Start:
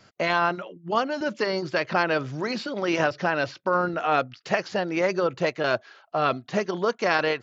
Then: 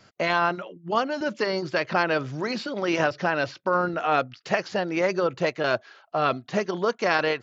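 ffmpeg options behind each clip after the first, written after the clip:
ffmpeg -i in.wav -af anull out.wav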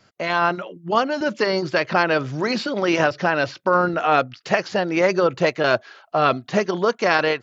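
ffmpeg -i in.wav -af "dynaudnorm=framelen=230:gausssize=3:maxgain=9dB,volume=-2dB" out.wav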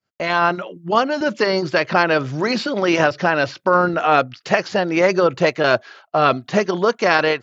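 ffmpeg -i in.wav -af "agate=range=-33dB:threshold=-43dB:ratio=3:detection=peak,volume=2.5dB" out.wav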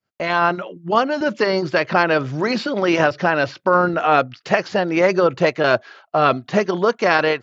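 ffmpeg -i in.wav -af "highshelf=frequency=4900:gain=-6" out.wav

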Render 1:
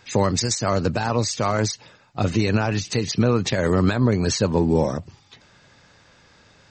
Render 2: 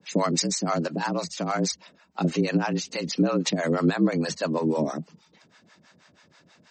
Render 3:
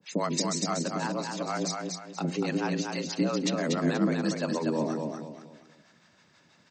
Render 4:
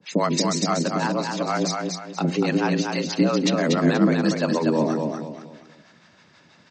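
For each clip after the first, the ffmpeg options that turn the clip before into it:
ffmpeg -i in.wav -filter_complex "[0:a]afreqshift=72,acrossover=split=540[link_01][link_02];[link_01]aeval=exprs='val(0)*(1-1/2+1/2*cos(2*PI*6.2*n/s))':channel_layout=same[link_03];[link_02]aeval=exprs='val(0)*(1-1/2-1/2*cos(2*PI*6.2*n/s))':channel_layout=same[link_04];[link_03][link_04]amix=inputs=2:normalize=0" out.wav
ffmpeg -i in.wav -filter_complex "[0:a]bandreject=frequency=89.16:width_type=h:width=4,bandreject=frequency=178.32:width_type=h:width=4,bandreject=frequency=267.48:width_type=h:width=4,bandreject=frequency=356.64:width_type=h:width=4,bandreject=frequency=445.8:width_type=h:width=4,bandreject=frequency=534.96:width_type=h:width=4,bandreject=frequency=624.12:width_type=h:width=4,bandreject=frequency=713.28:width_type=h:width=4,bandreject=frequency=802.44:width_type=h:width=4,bandreject=frequency=891.6:width_type=h:width=4,bandreject=frequency=980.76:width_type=h:width=4,asplit=2[link_01][link_02];[link_02]aecho=0:1:240|480|720|960:0.631|0.215|0.0729|0.0248[link_03];[link_01][link_03]amix=inputs=2:normalize=0,volume=-5dB" out.wav
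ffmpeg -i in.wav -af "lowpass=6000,volume=7.5dB" out.wav

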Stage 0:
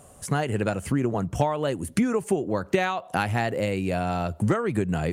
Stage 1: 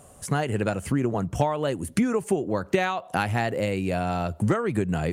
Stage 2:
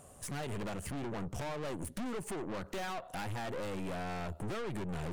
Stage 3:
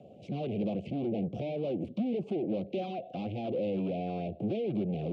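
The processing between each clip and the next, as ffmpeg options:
ffmpeg -i in.wav -af anull out.wav
ffmpeg -i in.wav -af "aeval=exprs='(tanh(56.2*val(0)+0.65)-tanh(0.65))/56.2':channel_layout=same,volume=-2dB" out.wav
ffmpeg -i in.wav -filter_complex "[0:a]asuperstop=centerf=1300:order=12:qfactor=0.83,acrossover=split=360|1700|2300[link_01][link_02][link_03][link_04];[link_03]acrusher=samples=9:mix=1:aa=0.000001:lfo=1:lforange=9:lforate=3.2[link_05];[link_01][link_02][link_05][link_04]amix=inputs=4:normalize=0,highpass=frequency=110:width=0.5412,highpass=frequency=110:width=1.3066,equalizer=frequency=210:width_type=q:width=4:gain=7,equalizer=frequency=340:width_type=q:width=4:gain=5,equalizer=frequency=510:width_type=q:width=4:gain=4,equalizer=frequency=870:width_type=q:width=4:gain=4,equalizer=frequency=1800:width_type=q:width=4:gain=-6,lowpass=frequency=3100:width=0.5412,lowpass=frequency=3100:width=1.3066,volume=4dB" out.wav

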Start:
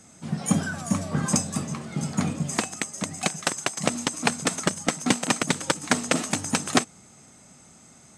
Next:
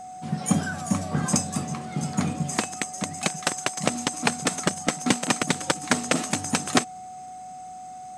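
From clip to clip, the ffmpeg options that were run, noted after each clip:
ffmpeg -i in.wav -af "aeval=exprs='val(0)+0.0141*sin(2*PI*740*n/s)':channel_layout=same" out.wav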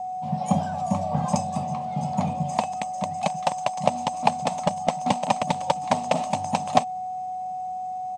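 ffmpeg -i in.wav -af "firequalizer=gain_entry='entry(200,0);entry(350,-16);entry(580,7);entry(880,10);entry(1400,-14);entry(2500,-4);entry(12000,-19)':delay=0.05:min_phase=1" out.wav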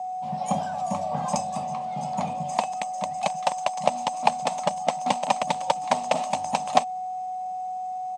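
ffmpeg -i in.wav -af "highpass=frequency=440:poles=1,volume=1dB" out.wav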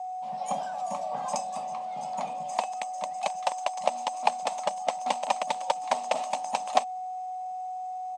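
ffmpeg -i in.wav -af "highpass=350,volume=-3.5dB" out.wav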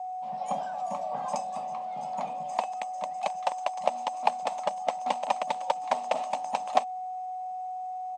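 ffmpeg -i in.wav -af "highshelf=frequency=3900:gain=-9" out.wav

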